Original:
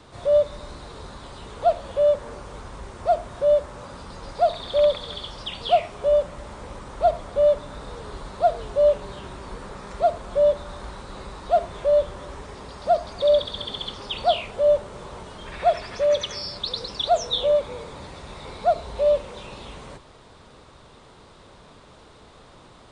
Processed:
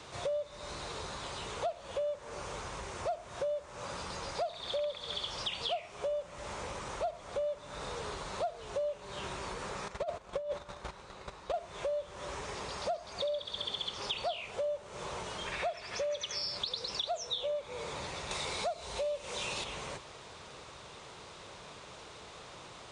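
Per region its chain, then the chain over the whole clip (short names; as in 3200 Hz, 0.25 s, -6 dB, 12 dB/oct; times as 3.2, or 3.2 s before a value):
9.88–11.54 high shelf 4700 Hz -6 dB + gate -35 dBFS, range -16 dB + negative-ratio compressor -22 dBFS, ratio -0.5
18.31–19.64 high shelf 4300 Hz +9 dB + upward compressor, threshold -26 dBFS
whole clip: fifteen-band EQ 250 Hz -7 dB, 2500 Hz +5 dB, 6300 Hz +7 dB; compressor 8:1, threshold -33 dBFS; HPF 130 Hz 6 dB/oct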